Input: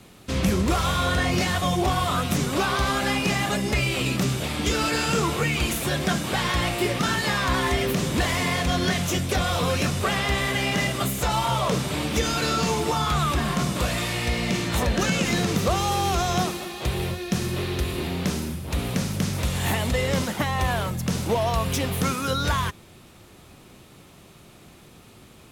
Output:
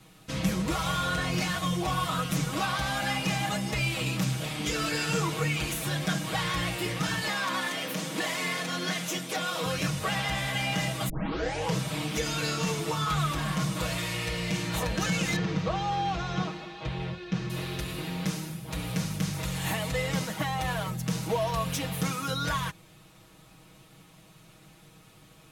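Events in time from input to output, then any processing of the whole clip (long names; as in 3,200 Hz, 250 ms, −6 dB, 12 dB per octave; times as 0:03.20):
0:07.27–0:09.66: high-pass filter 200 Hz 24 dB per octave
0:11.09: tape start 0.68 s
0:15.36–0:17.50: high-frequency loss of the air 180 metres
whole clip: parametric band 360 Hz −4.5 dB 0.73 octaves; comb filter 6.3 ms, depth 97%; level −7.5 dB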